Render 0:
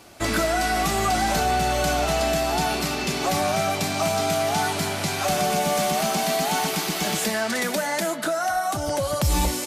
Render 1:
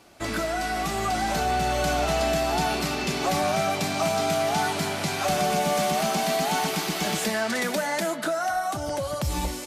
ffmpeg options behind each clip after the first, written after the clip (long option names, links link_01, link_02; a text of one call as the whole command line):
ffmpeg -i in.wav -af "highshelf=frequency=6500:gain=-4.5,bandreject=frequency=50:width_type=h:width=6,bandreject=frequency=100:width_type=h:width=6,dynaudnorm=framelen=410:gausssize=7:maxgain=4dB,volume=-5dB" out.wav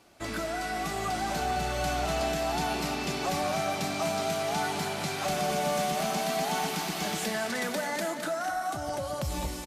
ffmpeg -i in.wav -af "aecho=1:1:212|424|636|848|1060:0.355|0.17|0.0817|0.0392|0.0188,volume=-5.5dB" out.wav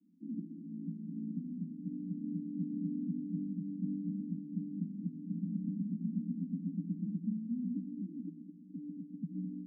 ffmpeg -i in.wav -af "asuperpass=centerf=220:order=12:qfactor=1.7,volume=2dB" out.wav